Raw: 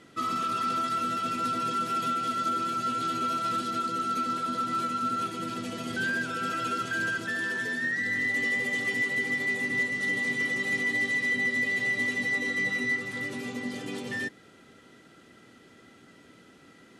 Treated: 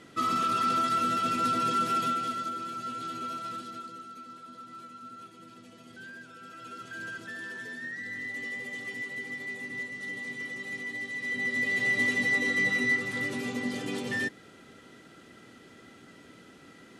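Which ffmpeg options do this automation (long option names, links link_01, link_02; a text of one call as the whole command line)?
ffmpeg -i in.wav -af "volume=20.5dB,afade=type=out:start_time=1.89:duration=0.63:silence=0.354813,afade=type=out:start_time=3.32:duration=0.8:silence=0.334965,afade=type=in:start_time=6.5:duration=0.66:silence=0.421697,afade=type=in:start_time=11.13:duration=0.87:silence=0.281838" out.wav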